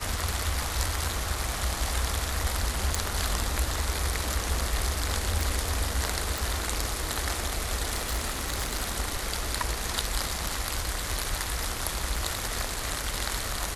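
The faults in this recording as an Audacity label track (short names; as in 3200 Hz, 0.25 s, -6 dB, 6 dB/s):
2.950000	2.950000	pop
5.410000	5.410000	pop
6.380000	6.380000	pop
7.940000	8.950000	clipped -23 dBFS
12.160000	12.160000	gap 2.9 ms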